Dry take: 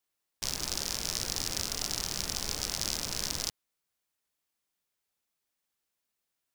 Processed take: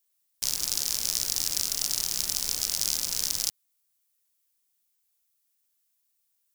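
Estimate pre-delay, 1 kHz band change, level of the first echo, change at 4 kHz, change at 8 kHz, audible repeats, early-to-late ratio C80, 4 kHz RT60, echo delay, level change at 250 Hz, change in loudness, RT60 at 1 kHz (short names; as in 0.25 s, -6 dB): none, -4.5 dB, none, +4.0 dB, +6.5 dB, none, none, none, none, -6.0 dB, +6.0 dB, none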